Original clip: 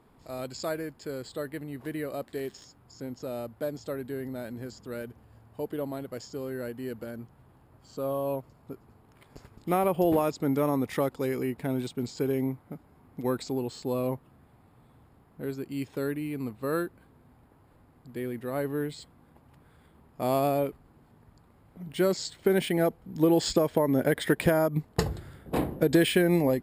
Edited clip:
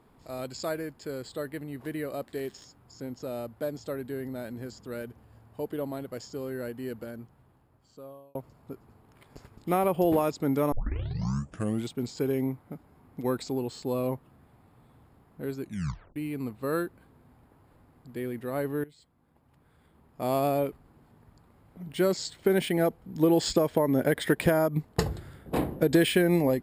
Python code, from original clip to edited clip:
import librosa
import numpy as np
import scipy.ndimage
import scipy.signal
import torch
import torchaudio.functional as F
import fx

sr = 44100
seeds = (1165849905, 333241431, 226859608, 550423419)

y = fx.edit(x, sr, fx.fade_out_span(start_s=6.92, length_s=1.43),
    fx.tape_start(start_s=10.72, length_s=1.19),
    fx.tape_stop(start_s=15.61, length_s=0.55),
    fx.fade_in_from(start_s=18.84, length_s=1.71, floor_db=-18.5), tone=tone)